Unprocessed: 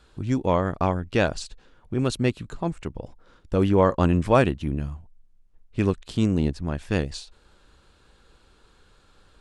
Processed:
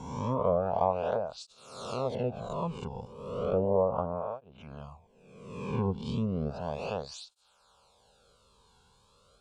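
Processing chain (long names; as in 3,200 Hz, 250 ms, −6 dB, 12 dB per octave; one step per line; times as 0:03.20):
peak hold with a rise ahead of every peak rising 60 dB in 1.22 s
treble cut that deepens with the level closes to 520 Hz, closed at −13.5 dBFS
phaser with its sweep stopped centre 770 Hz, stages 4
through-zero flanger with one copy inverted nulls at 0.34 Hz, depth 1.7 ms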